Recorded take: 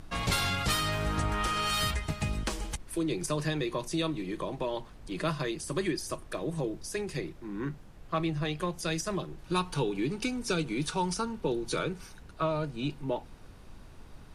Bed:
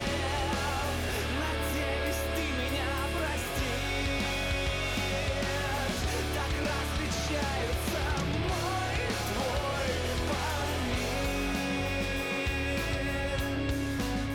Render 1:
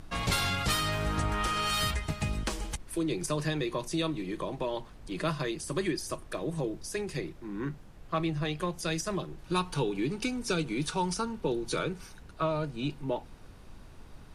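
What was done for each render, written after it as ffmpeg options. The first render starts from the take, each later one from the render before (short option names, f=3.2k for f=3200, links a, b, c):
-af anull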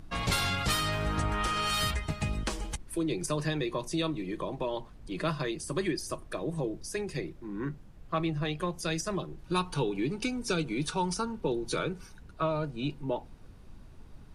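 -af "afftdn=nr=6:nf=-50"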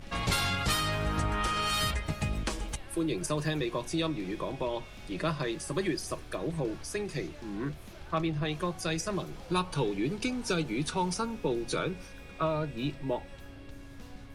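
-filter_complex "[1:a]volume=-18.5dB[a];[0:a][a]amix=inputs=2:normalize=0"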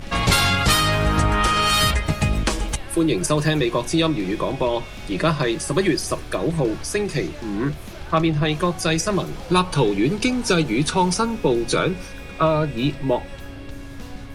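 -af "volume=11.5dB"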